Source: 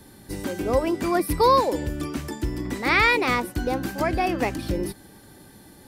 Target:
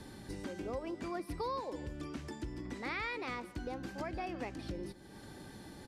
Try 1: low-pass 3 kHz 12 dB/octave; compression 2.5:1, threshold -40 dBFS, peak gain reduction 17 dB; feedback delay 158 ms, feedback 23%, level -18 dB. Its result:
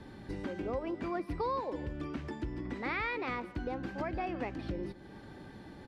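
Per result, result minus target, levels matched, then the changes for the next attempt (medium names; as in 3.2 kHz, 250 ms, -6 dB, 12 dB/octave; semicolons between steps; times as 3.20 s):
8 kHz band -13.5 dB; compression: peak gain reduction -4 dB
change: low-pass 7.1 kHz 12 dB/octave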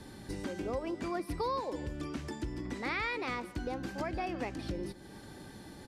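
compression: peak gain reduction -4 dB
change: compression 2.5:1, threshold -46.5 dBFS, peak gain reduction 21 dB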